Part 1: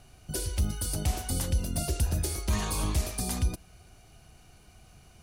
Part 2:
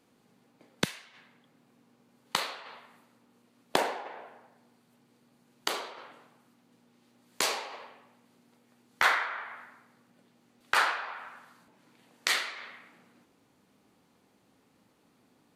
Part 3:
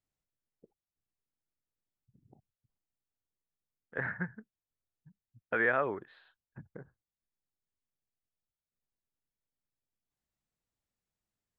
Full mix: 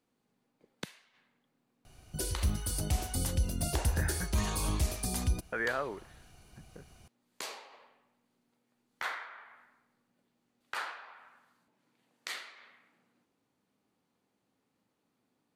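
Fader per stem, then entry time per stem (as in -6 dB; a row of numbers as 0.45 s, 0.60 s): -2.5 dB, -12.5 dB, -4.5 dB; 1.85 s, 0.00 s, 0.00 s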